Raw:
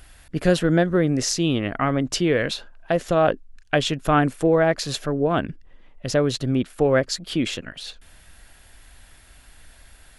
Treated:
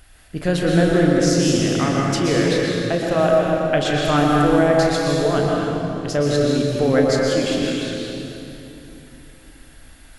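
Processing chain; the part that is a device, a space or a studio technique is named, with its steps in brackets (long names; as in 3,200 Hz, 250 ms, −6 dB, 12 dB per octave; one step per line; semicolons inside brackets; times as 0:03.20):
tunnel (flutter between parallel walls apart 5.9 metres, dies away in 0.21 s; convolution reverb RT60 3.1 s, pre-delay 112 ms, DRR −2.5 dB)
level −2 dB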